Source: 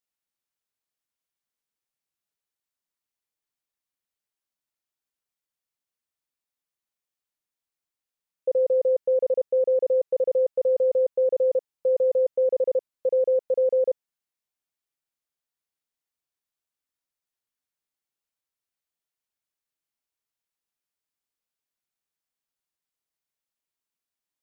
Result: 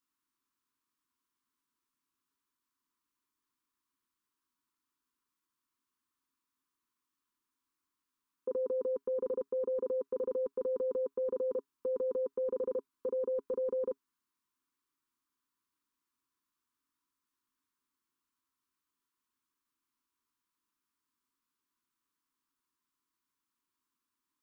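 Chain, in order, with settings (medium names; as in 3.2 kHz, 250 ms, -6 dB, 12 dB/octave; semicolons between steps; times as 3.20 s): FFT filter 180 Hz 0 dB, 270 Hz +13 dB, 410 Hz +2 dB, 660 Hz -29 dB, 990 Hz +12 dB, 2 kHz -1 dB; trim +1 dB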